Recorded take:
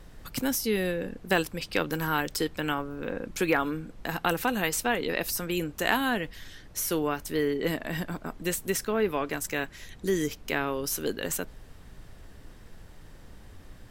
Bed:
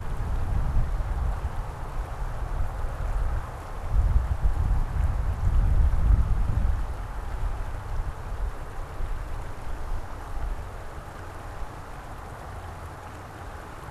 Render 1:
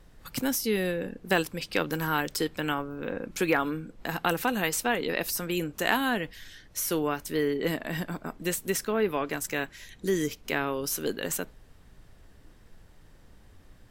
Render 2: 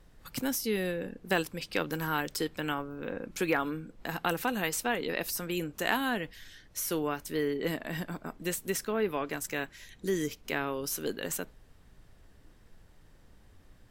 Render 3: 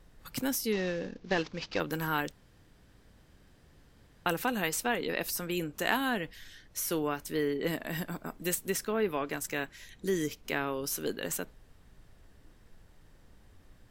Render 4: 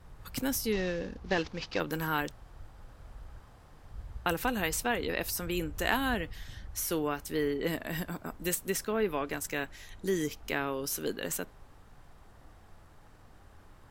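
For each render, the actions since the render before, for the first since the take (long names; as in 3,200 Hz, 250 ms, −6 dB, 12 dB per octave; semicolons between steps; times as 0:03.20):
noise reduction from a noise print 6 dB
level −3.5 dB
0:00.72–0:01.80: variable-slope delta modulation 32 kbit/s; 0:02.32–0:04.26: fill with room tone; 0:07.73–0:08.55: high-shelf EQ 8,700 Hz +9 dB
mix in bed −21 dB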